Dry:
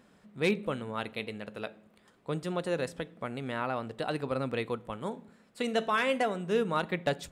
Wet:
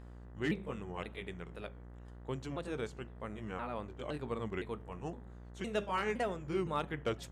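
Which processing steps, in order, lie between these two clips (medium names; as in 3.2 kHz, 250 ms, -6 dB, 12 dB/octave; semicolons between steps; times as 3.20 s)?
sawtooth pitch modulation -4.5 st, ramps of 513 ms; mains buzz 60 Hz, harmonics 33, -45 dBFS -7 dB/octave; trim -5.5 dB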